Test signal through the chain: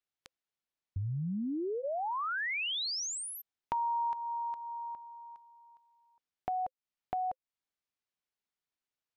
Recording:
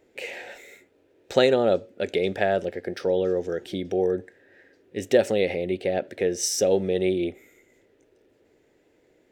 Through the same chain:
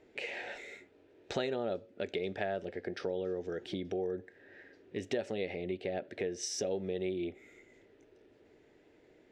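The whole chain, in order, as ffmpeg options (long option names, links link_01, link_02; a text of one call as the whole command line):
ffmpeg -i in.wav -af "lowpass=5200,bandreject=frequency=520:width=12,acompressor=threshold=-38dB:ratio=2.5" out.wav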